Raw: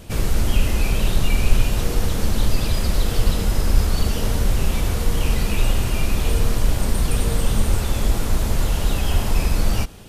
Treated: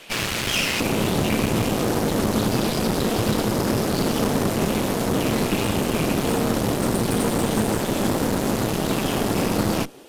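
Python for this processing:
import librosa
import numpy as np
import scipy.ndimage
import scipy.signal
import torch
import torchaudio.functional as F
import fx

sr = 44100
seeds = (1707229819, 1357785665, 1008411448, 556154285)

y = fx.spec_gate(x, sr, threshold_db=-10, keep='weak')
y = fx.peak_eq(y, sr, hz=fx.steps((0.0, 2500.0), (0.8, 280.0)), db=12.5, octaves=1.9)
y = fx.cheby_harmonics(y, sr, harmonics=(8,), levels_db=(-13,), full_scale_db=-6.0)
y = fx.peak_eq(y, sr, hz=65.0, db=-5.5, octaves=0.68)
y = F.gain(torch.from_numpy(y), -3.5).numpy()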